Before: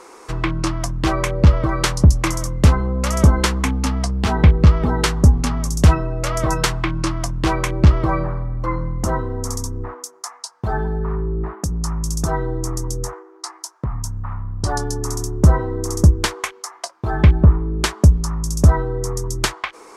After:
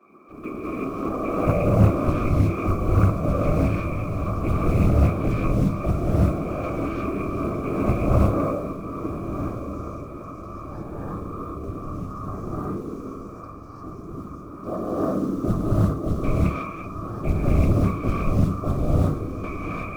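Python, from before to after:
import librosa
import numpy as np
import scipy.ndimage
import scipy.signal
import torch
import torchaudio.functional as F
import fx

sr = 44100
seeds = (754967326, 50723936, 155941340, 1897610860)

y = fx.low_shelf_res(x, sr, hz=200.0, db=-12.5, q=1.5)
y = fx.transient(y, sr, attack_db=-4, sustain_db=2)
y = fx.octave_resonator(y, sr, note='D', decay_s=0.42)
y = fx.quant_float(y, sr, bits=4)
y = fx.whisperise(y, sr, seeds[0])
y = fx.echo_diffused(y, sr, ms=1342, feedback_pct=54, wet_db=-12.5)
y = fx.rev_gated(y, sr, seeds[1], gate_ms=380, shape='rising', drr_db=-7.0)
y = fx.doppler_dist(y, sr, depth_ms=0.37)
y = y * librosa.db_to_amplitude(8.0)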